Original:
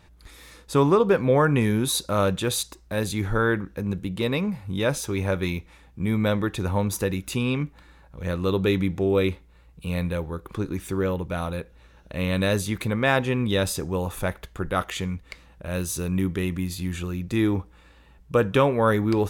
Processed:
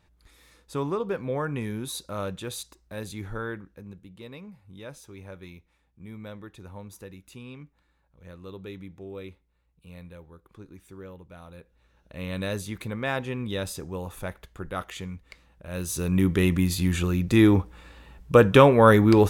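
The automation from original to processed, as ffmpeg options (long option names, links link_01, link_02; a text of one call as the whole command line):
ffmpeg -i in.wav -af "volume=13dB,afade=type=out:start_time=3.27:duration=0.75:silence=0.398107,afade=type=in:start_time=11.44:duration=0.95:silence=0.298538,afade=type=in:start_time=15.68:duration=0.78:silence=0.237137" out.wav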